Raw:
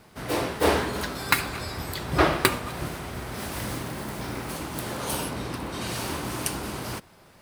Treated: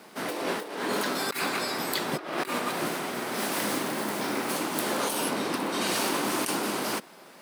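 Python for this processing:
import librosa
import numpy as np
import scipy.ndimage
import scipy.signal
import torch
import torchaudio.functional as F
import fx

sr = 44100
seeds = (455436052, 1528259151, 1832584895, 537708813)

y = scipy.signal.sosfilt(scipy.signal.butter(4, 210.0, 'highpass', fs=sr, output='sos'), x)
y = fx.over_compress(y, sr, threshold_db=-32.0, ratio=-1.0)
y = y * librosa.db_to_amplitude(2.5)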